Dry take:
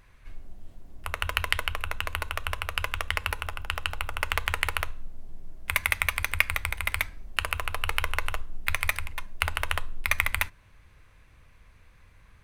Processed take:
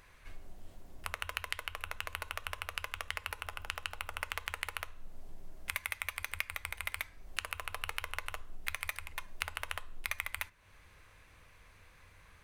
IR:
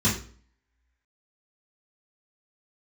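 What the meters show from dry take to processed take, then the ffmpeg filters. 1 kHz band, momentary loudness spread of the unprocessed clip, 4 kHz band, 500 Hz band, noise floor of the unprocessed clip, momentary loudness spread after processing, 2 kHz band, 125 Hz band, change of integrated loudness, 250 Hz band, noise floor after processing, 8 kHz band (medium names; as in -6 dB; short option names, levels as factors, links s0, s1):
-10.0 dB, 8 LU, -9.5 dB, -10.5 dB, -56 dBFS, 18 LU, -10.5 dB, -15.0 dB, -10.5 dB, -11.5 dB, -60 dBFS, -8.0 dB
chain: -filter_complex "[0:a]bass=f=250:g=-8,treble=f=4000:g=2,acompressor=threshold=0.0126:ratio=3,asplit=2[s0][s1];[1:a]atrim=start_sample=2205[s2];[s1][s2]afir=irnorm=-1:irlink=0,volume=0.0211[s3];[s0][s3]amix=inputs=2:normalize=0,volume=1.12"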